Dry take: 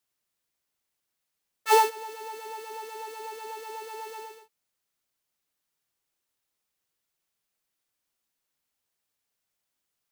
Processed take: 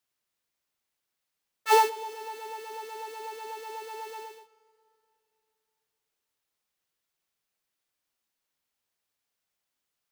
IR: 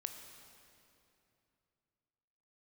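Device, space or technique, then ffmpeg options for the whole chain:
filtered reverb send: -filter_complex "[0:a]asplit=2[s0][s1];[s1]highpass=f=430:p=1,lowpass=6800[s2];[1:a]atrim=start_sample=2205[s3];[s2][s3]afir=irnorm=-1:irlink=0,volume=0.473[s4];[s0][s4]amix=inputs=2:normalize=0,volume=0.75"

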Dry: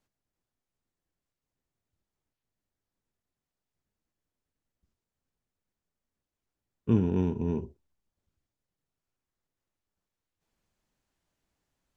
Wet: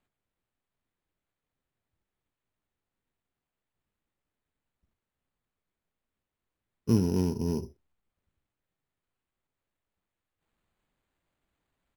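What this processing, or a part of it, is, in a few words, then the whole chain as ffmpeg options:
crushed at another speed: -af "asetrate=35280,aresample=44100,acrusher=samples=10:mix=1:aa=0.000001,asetrate=55125,aresample=44100"

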